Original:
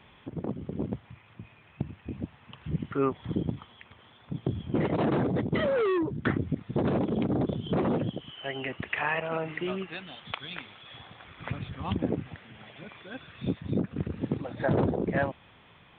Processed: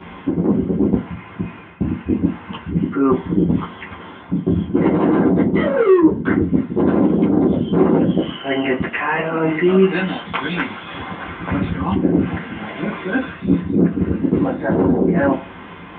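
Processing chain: reverse; compressor 10:1, threshold -35 dBFS, peak gain reduction 14.5 dB; reverse; reverb RT60 0.35 s, pre-delay 10 ms, DRR -9 dB; gain +3 dB

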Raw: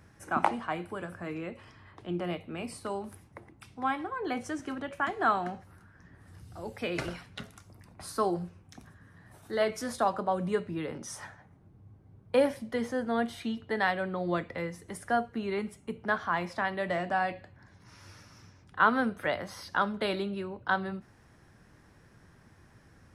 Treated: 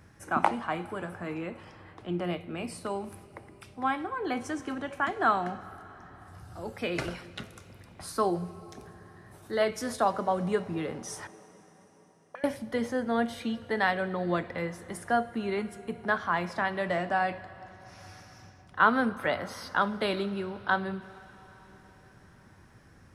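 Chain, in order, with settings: 11.27–12.44 auto-wah 220–1700 Hz, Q 14, up, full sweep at -28 dBFS; reverb RT60 4.8 s, pre-delay 7 ms, DRR 16 dB; gain +1.5 dB

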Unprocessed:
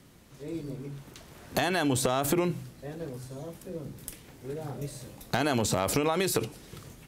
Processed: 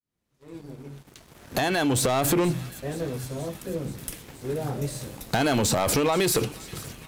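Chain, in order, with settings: opening faded in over 2.28 s; sample leveller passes 2; thin delay 0.477 s, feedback 73%, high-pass 1600 Hz, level -17 dB

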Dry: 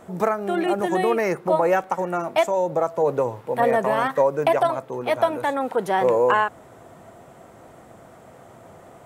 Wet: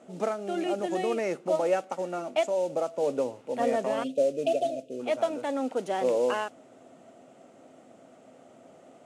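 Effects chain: spectral delete 4.03–5, 730–2400 Hz; modulation noise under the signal 21 dB; speaker cabinet 190–9300 Hz, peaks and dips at 260 Hz +10 dB, 590 Hz +5 dB, 1000 Hz -8 dB, 1700 Hz -5 dB, 2800 Hz +5 dB, 6700 Hz +3 dB; gain -8.5 dB

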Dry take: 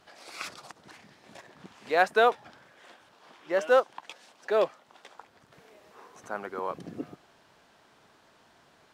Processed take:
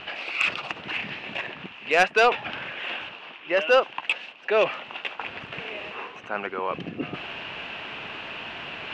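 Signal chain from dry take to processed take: reverse; upward compressor, threshold -29 dBFS; reverse; synth low-pass 2700 Hz, resonance Q 7.4; soft clip -13 dBFS, distortion -14 dB; gain +3.5 dB

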